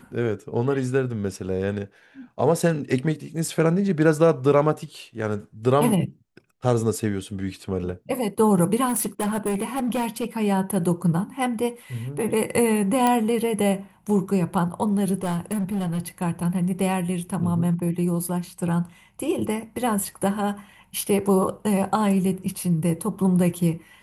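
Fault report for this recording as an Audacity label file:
8.880000	10.250000	clipping −20.5 dBFS
13.070000	13.070000	click −8 dBFS
15.230000	16.000000	clipping −21.5 dBFS

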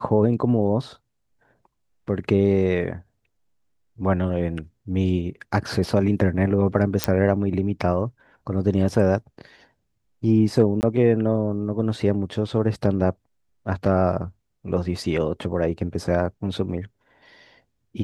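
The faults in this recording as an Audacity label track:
7.040000	7.040000	click −2 dBFS
10.810000	10.830000	drop-out 19 ms

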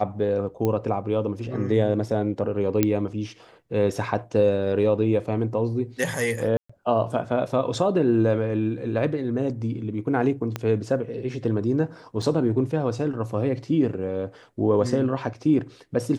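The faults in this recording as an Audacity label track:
0.650000	0.650000	click −13 dBFS
2.830000	2.830000	click −6 dBFS
6.570000	6.700000	drop-out 125 ms
10.560000	10.560000	click −13 dBFS
12.220000	12.220000	drop-out 4.4 ms

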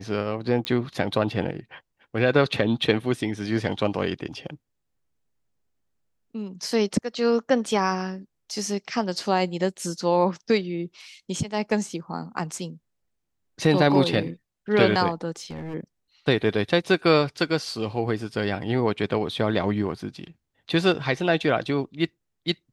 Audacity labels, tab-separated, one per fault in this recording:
0.650000	0.650000	click −13 dBFS
15.360000	15.750000	clipping −30.5 dBFS

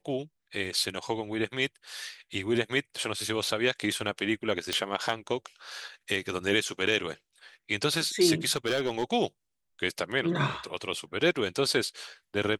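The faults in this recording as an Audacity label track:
4.730000	4.730000	click −14 dBFS
8.560000	9.040000	clipping −22 dBFS

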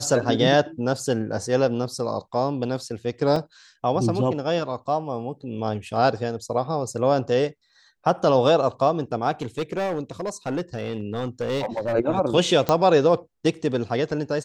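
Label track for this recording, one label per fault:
3.360000	3.360000	drop-out 2.6 ms
9.410000	11.940000	clipping −21.5 dBFS
12.690000	12.690000	click −7 dBFS

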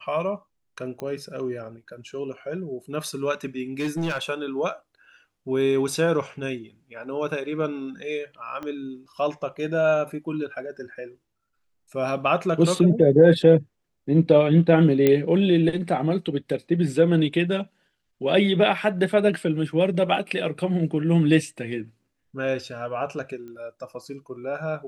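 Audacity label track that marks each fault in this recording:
1.000000	1.000000	click −21 dBFS
3.790000	4.230000	clipping −22 dBFS
8.630000	8.630000	click −22 dBFS
15.070000	15.070000	click −7 dBFS
23.480000	23.480000	click −30 dBFS

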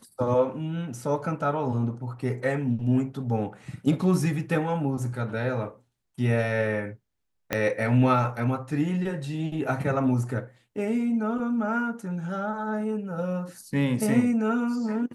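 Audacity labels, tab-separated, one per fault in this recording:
7.530000	7.530000	click −10 dBFS

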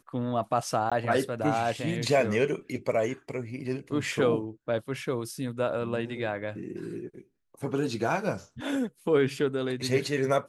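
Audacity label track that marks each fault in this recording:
0.900000	0.920000	drop-out 16 ms

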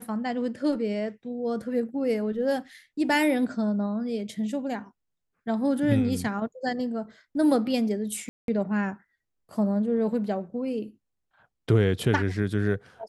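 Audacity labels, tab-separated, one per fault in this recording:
8.290000	8.480000	drop-out 192 ms

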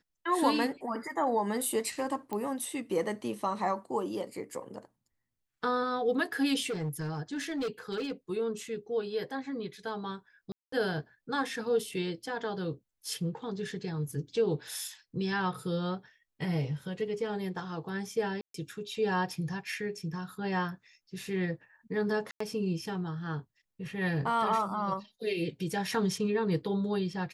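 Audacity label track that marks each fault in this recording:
2.330000	2.330000	click −22 dBFS
6.660000	8.120000	clipping −29.5 dBFS
10.520000	10.720000	drop-out 204 ms
18.410000	18.540000	drop-out 133 ms
22.310000	22.400000	drop-out 94 ms

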